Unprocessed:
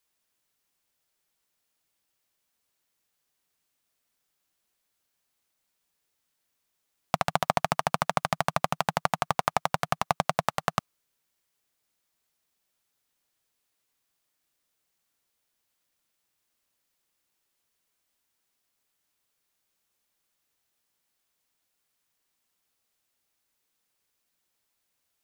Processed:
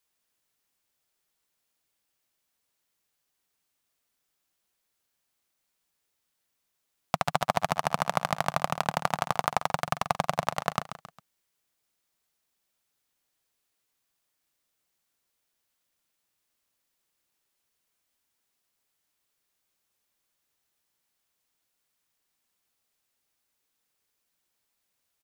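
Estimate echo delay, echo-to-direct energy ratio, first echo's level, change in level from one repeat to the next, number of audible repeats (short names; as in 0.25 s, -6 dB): 0.135 s, -11.0 dB, -12.0 dB, -7.5 dB, 3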